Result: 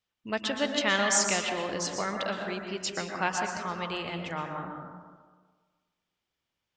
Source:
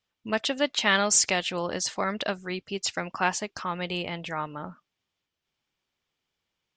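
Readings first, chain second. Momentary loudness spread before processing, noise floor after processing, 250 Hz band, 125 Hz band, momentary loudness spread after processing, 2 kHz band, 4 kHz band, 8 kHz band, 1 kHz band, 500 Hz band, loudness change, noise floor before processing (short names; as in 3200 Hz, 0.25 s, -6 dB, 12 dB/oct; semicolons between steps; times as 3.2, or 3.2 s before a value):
12 LU, under -85 dBFS, -1.5 dB, -2.0 dB, 12 LU, -2.0 dB, -3.0 dB, -3.0 dB, -1.5 dB, -1.5 dB, -2.5 dB, -85 dBFS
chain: plate-style reverb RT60 1.5 s, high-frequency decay 0.35×, pre-delay 0.105 s, DRR 2.5 dB; gain -4 dB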